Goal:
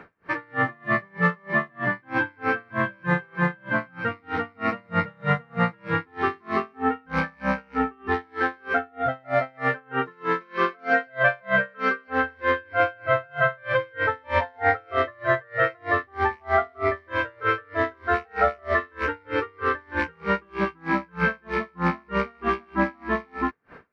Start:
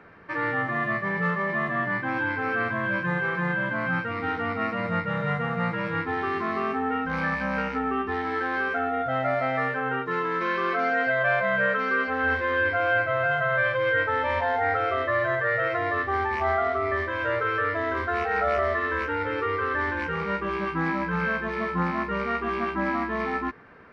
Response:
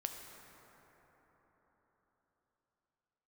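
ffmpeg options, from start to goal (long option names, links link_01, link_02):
-af "aeval=exprs='val(0)*pow(10,-35*(0.5-0.5*cos(2*PI*3.2*n/s))/20)':channel_layout=same,volume=7dB"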